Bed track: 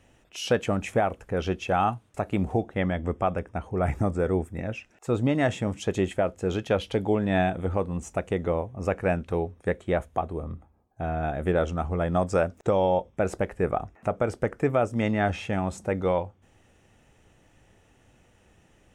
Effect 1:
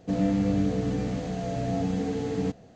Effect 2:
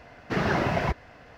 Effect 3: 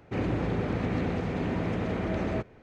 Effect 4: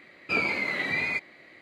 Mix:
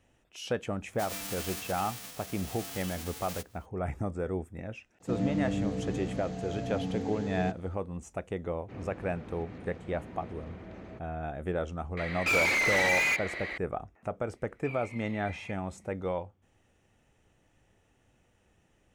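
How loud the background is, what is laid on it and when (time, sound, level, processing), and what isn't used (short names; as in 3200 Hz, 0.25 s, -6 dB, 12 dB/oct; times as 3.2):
bed track -8 dB
0.91 add 1 -15 dB + spectral whitening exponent 0.1
5 add 1 -6.5 dB
8.57 add 3 -16 dB
11.97 add 4 -5.5 dB + overdrive pedal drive 28 dB, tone 4000 Hz, clips at -14 dBFS
14.34 add 4 -17.5 dB + fixed phaser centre 1500 Hz, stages 6
not used: 2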